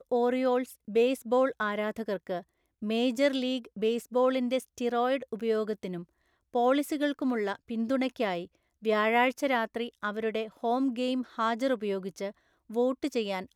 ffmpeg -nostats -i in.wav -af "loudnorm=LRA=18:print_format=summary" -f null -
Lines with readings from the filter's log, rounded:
Input Integrated:    -29.9 LUFS
Input True Peak:     -11.8 dBTP
Input LRA:             1.9 LU
Input Threshold:     -40.1 LUFS